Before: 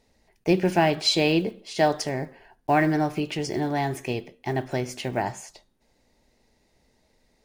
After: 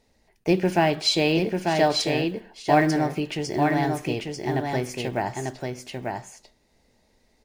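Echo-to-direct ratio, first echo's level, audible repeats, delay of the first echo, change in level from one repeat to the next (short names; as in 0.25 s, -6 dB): -4.0 dB, -4.0 dB, 1, 0.893 s, no steady repeat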